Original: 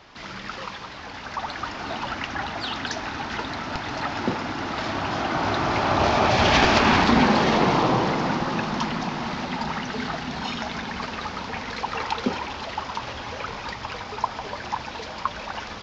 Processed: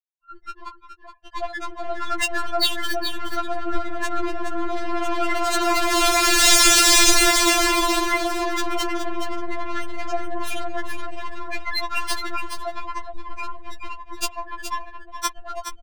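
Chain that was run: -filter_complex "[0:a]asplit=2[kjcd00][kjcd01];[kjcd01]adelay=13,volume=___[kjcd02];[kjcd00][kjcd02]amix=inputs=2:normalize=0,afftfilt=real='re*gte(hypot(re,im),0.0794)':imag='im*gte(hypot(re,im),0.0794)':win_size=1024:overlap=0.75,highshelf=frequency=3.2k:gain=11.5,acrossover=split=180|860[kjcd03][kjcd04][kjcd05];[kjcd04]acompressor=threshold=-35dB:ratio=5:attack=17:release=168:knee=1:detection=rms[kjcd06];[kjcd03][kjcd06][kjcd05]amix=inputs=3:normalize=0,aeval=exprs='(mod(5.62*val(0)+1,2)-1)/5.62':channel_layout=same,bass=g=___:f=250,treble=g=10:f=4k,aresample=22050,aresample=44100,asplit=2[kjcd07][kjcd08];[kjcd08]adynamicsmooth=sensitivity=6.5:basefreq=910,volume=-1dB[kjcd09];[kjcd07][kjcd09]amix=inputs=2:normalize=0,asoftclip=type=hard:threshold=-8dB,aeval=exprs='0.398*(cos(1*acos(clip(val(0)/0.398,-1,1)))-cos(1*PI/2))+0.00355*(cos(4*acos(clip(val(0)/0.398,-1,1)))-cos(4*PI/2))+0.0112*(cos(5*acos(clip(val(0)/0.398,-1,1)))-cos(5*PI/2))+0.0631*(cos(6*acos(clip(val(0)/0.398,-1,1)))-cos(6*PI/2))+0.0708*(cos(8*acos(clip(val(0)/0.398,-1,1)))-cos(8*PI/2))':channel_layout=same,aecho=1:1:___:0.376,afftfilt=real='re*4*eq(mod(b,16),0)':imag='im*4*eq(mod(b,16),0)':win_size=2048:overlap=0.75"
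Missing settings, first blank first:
-11dB, 13, 420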